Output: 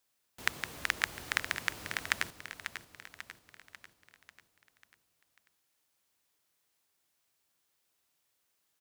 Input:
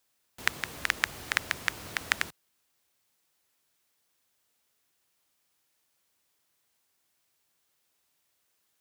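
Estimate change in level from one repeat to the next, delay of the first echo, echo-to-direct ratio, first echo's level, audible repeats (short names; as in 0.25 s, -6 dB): -6.0 dB, 0.543 s, -8.5 dB, -10.0 dB, 5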